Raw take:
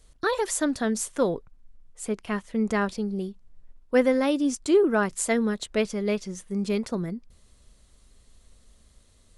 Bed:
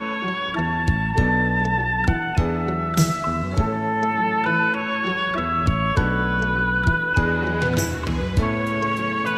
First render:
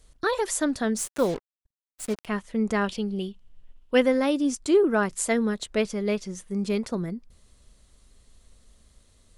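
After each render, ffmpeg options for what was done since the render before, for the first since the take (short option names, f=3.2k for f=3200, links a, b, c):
-filter_complex "[0:a]asplit=3[a][b][c];[a]afade=t=out:st=0.97:d=0.02[d];[b]acrusher=bits=5:mix=0:aa=0.5,afade=t=in:st=0.97:d=0.02,afade=t=out:st=2.25:d=0.02[e];[c]afade=t=in:st=2.25:d=0.02[f];[d][e][f]amix=inputs=3:normalize=0,asettb=1/sr,asplit=3[g][h][i];[g]atrim=end=2.844[j];[h]atrim=start=2.84:end=4.02,asetpts=PTS-STARTPTS,afade=t=in:d=0.004:c=qsin,afade=t=out:st=1.176:d=0.004:c=qsin,equalizer=f=3k:w=3:g=14.5[k];[i]atrim=start=4.016[l];[j][k]acrossfade=d=0.004:c1=hsin:c2=qsin[m];[m][l]acrossfade=d=0.004:c1=qsin:c2=hsin"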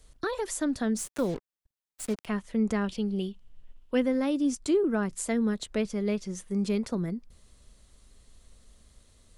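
-filter_complex "[0:a]acrossover=split=310[a][b];[b]acompressor=threshold=-36dB:ratio=2[c];[a][c]amix=inputs=2:normalize=0"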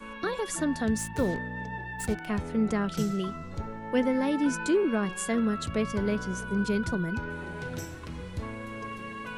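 -filter_complex "[1:a]volume=-15.5dB[a];[0:a][a]amix=inputs=2:normalize=0"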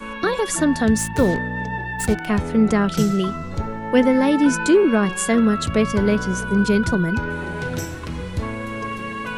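-af "volume=10dB"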